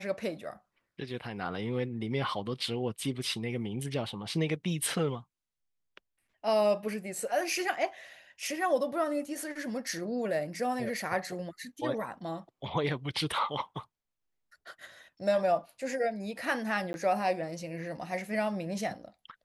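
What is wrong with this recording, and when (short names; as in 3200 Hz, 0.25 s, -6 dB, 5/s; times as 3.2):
16.93–16.94 gap 11 ms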